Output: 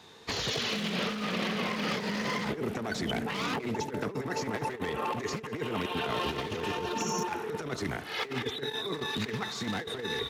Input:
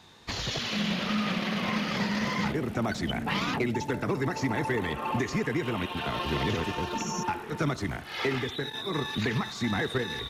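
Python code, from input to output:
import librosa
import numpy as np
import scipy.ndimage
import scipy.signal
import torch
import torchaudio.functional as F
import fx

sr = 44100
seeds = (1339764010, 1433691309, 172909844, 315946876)

y = np.minimum(x, 2.0 * 10.0 ** (-24.5 / 20.0) - x)
y = fx.highpass(y, sr, hz=140.0, slope=6)
y = fx.peak_eq(y, sr, hz=440.0, db=9.5, octaves=0.26)
y = fx.over_compress(y, sr, threshold_db=-31.0, ratio=-0.5)
y = y + 10.0 ** (-23.5 / 20.0) * np.pad(y, (int(206 * sr / 1000.0), 0))[:len(y)]
y = y * librosa.db_to_amplitude(-1.0)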